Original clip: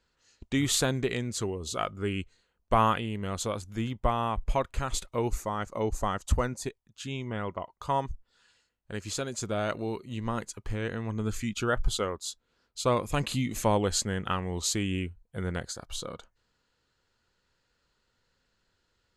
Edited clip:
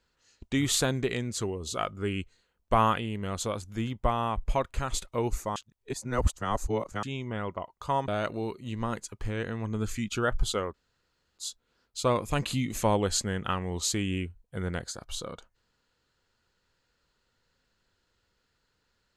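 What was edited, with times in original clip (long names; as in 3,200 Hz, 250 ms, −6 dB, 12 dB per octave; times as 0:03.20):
0:05.56–0:07.03: reverse
0:08.08–0:09.53: remove
0:12.19: splice in room tone 0.64 s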